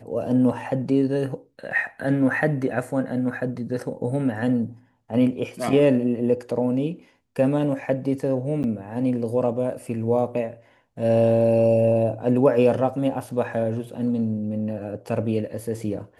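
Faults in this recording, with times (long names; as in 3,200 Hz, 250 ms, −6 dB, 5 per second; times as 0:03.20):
0:08.63–0:08.64: drop-out 9.6 ms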